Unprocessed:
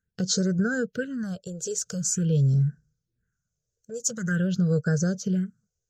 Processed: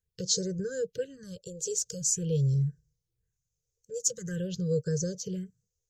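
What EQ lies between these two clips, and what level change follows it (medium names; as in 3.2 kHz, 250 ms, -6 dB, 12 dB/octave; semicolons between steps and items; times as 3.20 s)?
elliptic band-stop 530–1200 Hz, stop band 40 dB; static phaser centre 570 Hz, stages 4; 0.0 dB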